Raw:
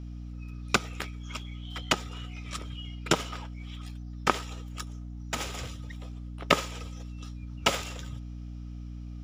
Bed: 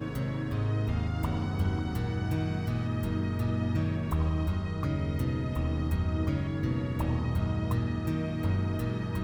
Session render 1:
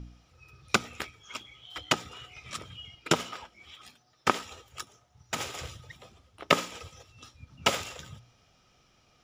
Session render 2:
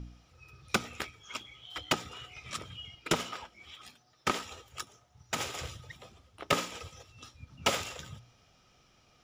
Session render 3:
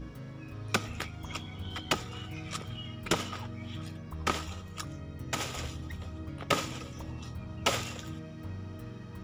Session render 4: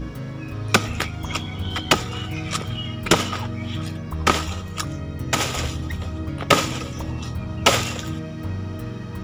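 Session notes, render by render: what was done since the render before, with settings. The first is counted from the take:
de-hum 60 Hz, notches 5
soft clip -17.5 dBFS, distortion -8 dB
add bed -12 dB
gain +12 dB

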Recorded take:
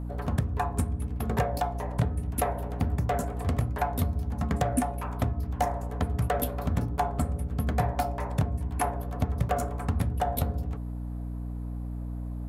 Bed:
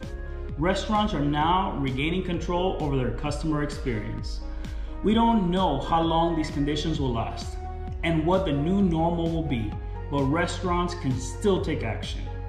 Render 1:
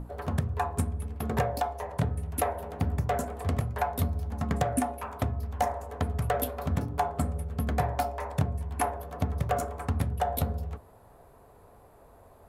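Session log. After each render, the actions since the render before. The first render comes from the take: notches 60/120/180/240/300 Hz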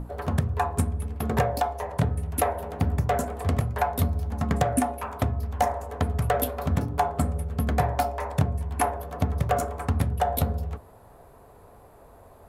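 gain +4 dB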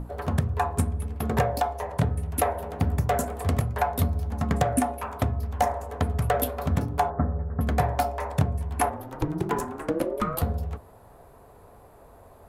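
2.87–3.62 high shelf 6800 Hz +5.5 dB; 7.1–7.61 steep low-pass 1900 Hz 72 dB/oct; 8.89–10.41 ring modulator 160 Hz -> 600 Hz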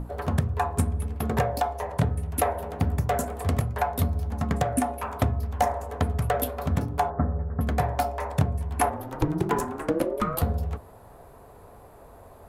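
vocal rider 0.5 s

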